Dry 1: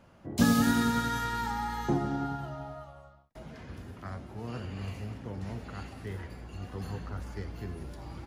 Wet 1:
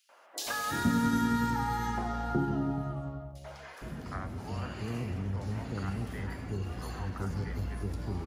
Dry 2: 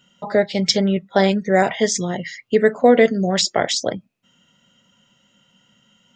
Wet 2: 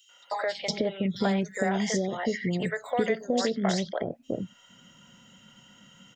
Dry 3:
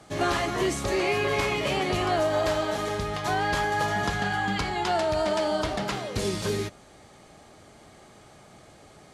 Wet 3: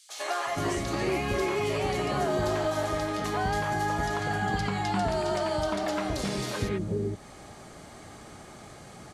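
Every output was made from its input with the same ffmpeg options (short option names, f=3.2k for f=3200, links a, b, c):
-filter_complex "[0:a]acrossover=split=930|5400[a][b][c];[a]acompressor=threshold=-26dB:ratio=4[d];[b]acompressor=threshold=-36dB:ratio=4[e];[c]acompressor=threshold=-47dB:ratio=4[f];[d][e][f]amix=inputs=3:normalize=0,acrossover=split=540|3200[g][h][i];[h]adelay=90[j];[g]adelay=460[k];[k][j][i]amix=inputs=3:normalize=0,asplit=2[l][m];[m]acompressor=threshold=-40dB:ratio=6,volume=0dB[n];[l][n]amix=inputs=2:normalize=0"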